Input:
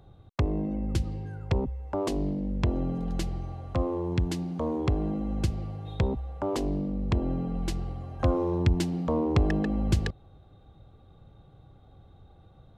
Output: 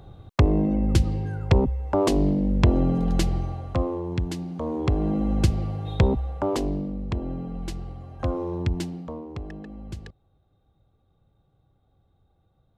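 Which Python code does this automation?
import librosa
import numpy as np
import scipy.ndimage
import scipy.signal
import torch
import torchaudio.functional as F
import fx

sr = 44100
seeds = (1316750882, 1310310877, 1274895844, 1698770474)

y = fx.gain(x, sr, db=fx.line((3.38, 8.0), (4.04, 0.0), (4.63, 0.0), (5.22, 7.0), (6.25, 7.0), (7.1, -2.0), (8.84, -2.0), (9.27, -12.0)))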